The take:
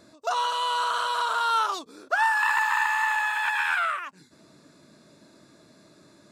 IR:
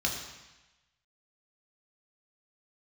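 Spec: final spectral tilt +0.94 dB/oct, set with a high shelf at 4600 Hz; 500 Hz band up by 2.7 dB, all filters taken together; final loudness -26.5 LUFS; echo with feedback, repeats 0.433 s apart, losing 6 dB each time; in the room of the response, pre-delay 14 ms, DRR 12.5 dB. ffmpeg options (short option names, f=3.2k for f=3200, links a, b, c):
-filter_complex "[0:a]equalizer=f=500:t=o:g=3.5,highshelf=f=4.6k:g=6.5,aecho=1:1:433|866|1299|1732|2165|2598:0.501|0.251|0.125|0.0626|0.0313|0.0157,asplit=2[a][b];[1:a]atrim=start_sample=2205,adelay=14[c];[b][c]afir=irnorm=-1:irlink=0,volume=-20dB[d];[a][d]amix=inputs=2:normalize=0,volume=-4dB"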